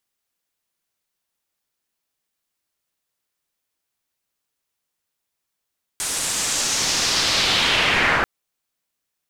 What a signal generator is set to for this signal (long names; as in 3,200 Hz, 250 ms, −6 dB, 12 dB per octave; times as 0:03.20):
filter sweep on noise white, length 2.24 s lowpass, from 9,000 Hz, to 1,400 Hz, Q 1.9, linear, gain ramp +14 dB